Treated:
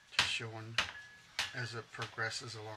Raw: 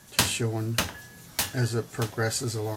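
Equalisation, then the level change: LPF 2900 Hz 12 dB/oct; tilt shelf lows -8 dB, about 1100 Hz; bell 250 Hz -7 dB 2.3 oct; -6.5 dB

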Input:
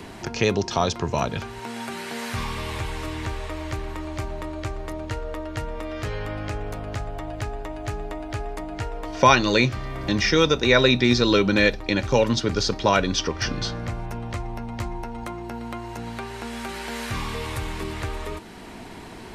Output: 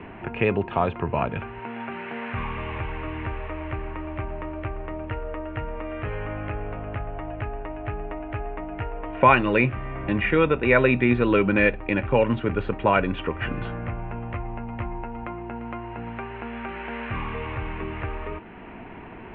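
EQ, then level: elliptic low-pass 2700 Hz, stop band 50 dB; 0.0 dB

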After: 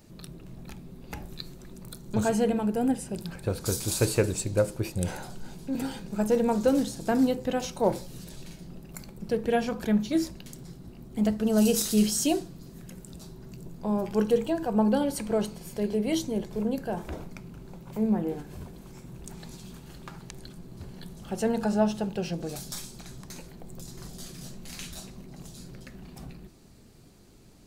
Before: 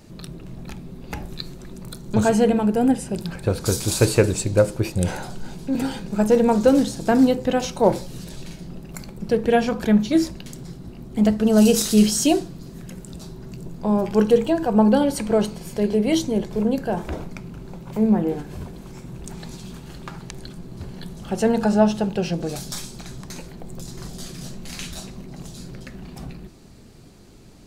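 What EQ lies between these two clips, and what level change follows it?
high shelf 11000 Hz +8.5 dB; -7.5 dB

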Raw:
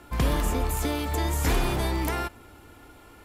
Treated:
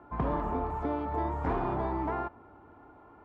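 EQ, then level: HPF 120 Hz 6 dB/oct; synth low-pass 1000 Hz, resonance Q 1.6; notch 510 Hz, Q 12; -3.5 dB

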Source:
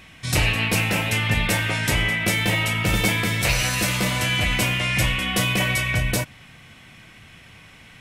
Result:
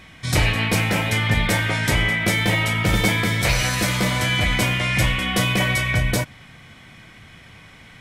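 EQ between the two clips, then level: high shelf 6300 Hz -5.5 dB; notch 2700 Hz, Q 8.6; +2.5 dB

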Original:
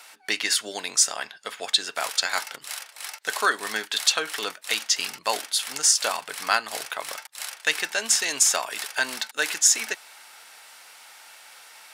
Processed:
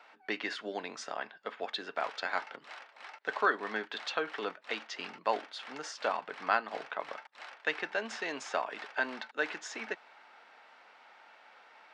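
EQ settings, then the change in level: HPF 170 Hz 24 dB/oct; tape spacing loss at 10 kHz 44 dB; 0.0 dB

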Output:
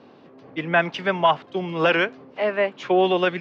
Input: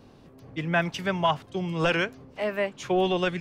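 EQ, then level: BPF 260–4400 Hz; air absorption 97 m; +6.5 dB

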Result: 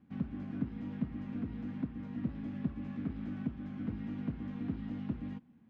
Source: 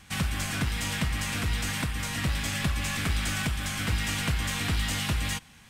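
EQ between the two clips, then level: band-pass 250 Hz, Q 3.1; air absorption 170 m; +2.5 dB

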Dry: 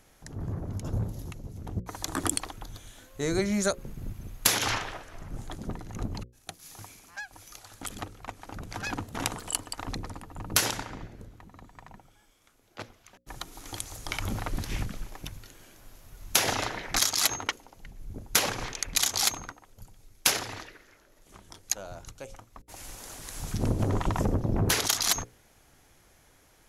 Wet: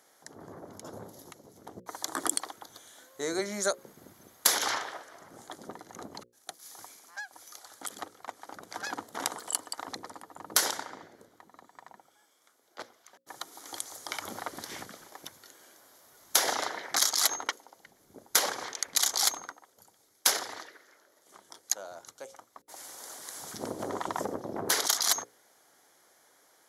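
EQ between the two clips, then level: HPF 410 Hz 12 dB/oct; bell 2600 Hz -14 dB 0.28 oct; 0.0 dB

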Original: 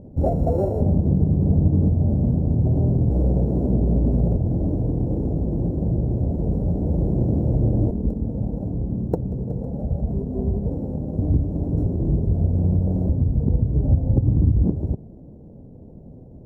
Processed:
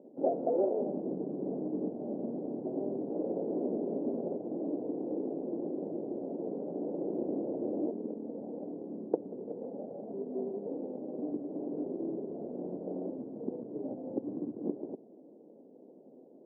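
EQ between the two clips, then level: HPF 280 Hz 24 dB/oct; band-pass 410 Hz, Q 0.63; air absorption 390 m; -3.5 dB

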